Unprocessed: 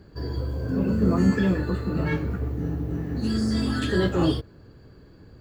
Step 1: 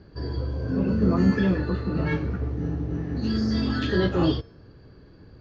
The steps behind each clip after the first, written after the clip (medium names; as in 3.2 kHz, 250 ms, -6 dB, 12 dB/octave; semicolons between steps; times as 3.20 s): steep low-pass 6.3 kHz 72 dB/octave; de-hum 228.8 Hz, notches 34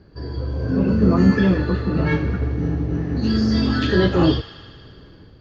level rider gain up to 6 dB; feedback echo behind a high-pass 77 ms, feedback 78%, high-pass 1.4 kHz, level -13.5 dB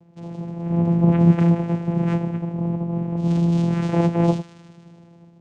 vocoder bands 4, saw 170 Hz